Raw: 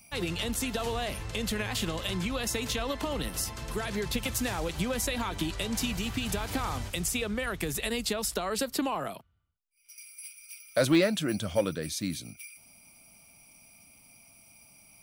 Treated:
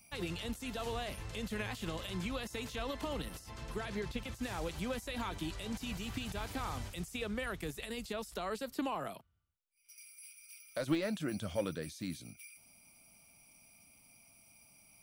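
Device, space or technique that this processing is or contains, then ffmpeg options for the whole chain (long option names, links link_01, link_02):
de-esser from a sidechain: -filter_complex "[0:a]asplit=2[link_01][link_02];[link_02]highpass=frequency=4400:width=0.5412,highpass=frequency=4400:width=1.3066,apad=whole_len=662772[link_03];[link_01][link_03]sidechaincompress=threshold=-42dB:ratio=12:attack=1.3:release=24,asettb=1/sr,asplit=3[link_04][link_05][link_06];[link_04]atrim=end=3.394[link_07];[link_05]atrim=start=3.39:end=4.43,asetpts=PTS-STARTPTS,afade=type=in:duration=0.004:curve=qsin,afade=type=out:start_time=1.036:duration=0.004:curve=qsin,highshelf=frequency=8300:gain=-9.5[link_08];[link_06]atrim=start=4.426[link_09];[link_07][link_08]acrossfade=duration=0.004:curve1=hsin:curve2=qsin[link_10];[link_10][link_09]acrossfade=duration=0.004:curve1=qsin:curve2=hsin,volume=-6dB"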